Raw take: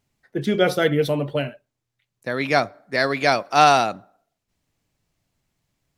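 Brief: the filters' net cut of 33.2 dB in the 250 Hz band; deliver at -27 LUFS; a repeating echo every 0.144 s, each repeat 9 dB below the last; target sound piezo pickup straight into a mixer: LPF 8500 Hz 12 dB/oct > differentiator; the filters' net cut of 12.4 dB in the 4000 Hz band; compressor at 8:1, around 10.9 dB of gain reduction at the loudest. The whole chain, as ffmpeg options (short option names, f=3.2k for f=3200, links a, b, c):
-af "equalizer=f=250:t=o:g=-7,equalizer=f=4k:t=o:g=-8.5,acompressor=threshold=-21dB:ratio=8,lowpass=8.5k,aderivative,aecho=1:1:144|288|432|576:0.355|0.124|0.0435|0.0152,volume=15.5dB"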